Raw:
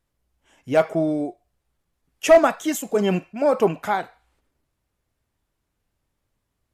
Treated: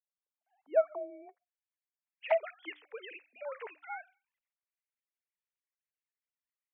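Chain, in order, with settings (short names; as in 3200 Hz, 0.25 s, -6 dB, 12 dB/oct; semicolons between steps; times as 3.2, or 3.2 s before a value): sine-wave speech; notches 60/120/180/240/300 Hz; 1.28–2.59 envelope flanger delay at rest 9.1 ms, full sweep at -7.5 dBFS; band-pass sweep 330 Hz -> 2200 Hz, 0.01–1.39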